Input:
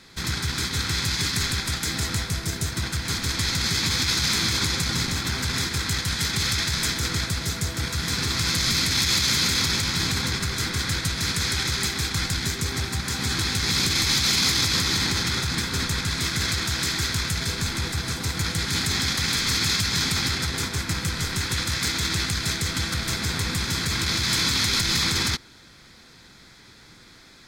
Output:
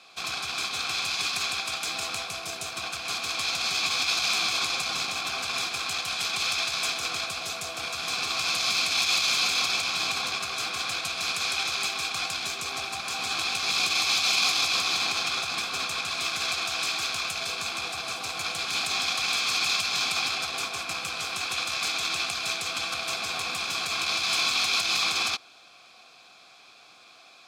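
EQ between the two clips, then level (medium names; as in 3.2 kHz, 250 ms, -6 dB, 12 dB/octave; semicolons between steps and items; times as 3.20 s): vowel filter a; treble shelf 2.1 kHz +11.5 dB; treble shelf 7.4 kHz +10.5 dB; +8.0 dB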